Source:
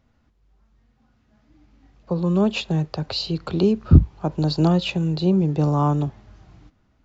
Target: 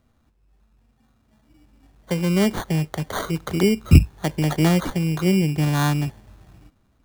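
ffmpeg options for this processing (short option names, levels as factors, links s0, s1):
-filter_complex "[0:a]asettb=1/sr,asplit=3[s0][s1][s2];[s0]atrim=end=5.474[s3];[s1]atrim=start=5.47:end=6.06,asetpts=PTS-STARTPTS,afade=t=in:d=0.004:c=qsin,afade=t=out:st=0.586:d=0.004:c=qsin,equalizer=f=480:t=o:w=0.55:g=-10[s4];[s2]atrim=start=6.056[s5];[s3][s4]acrossfade=d=0.004:c1=hsin:c2=qsin[s6];[s6][s5]acrossfade=d=0.004:c1=qsin:c2=hsin,acrusher=samples=17:mix=1:aa=0.000001"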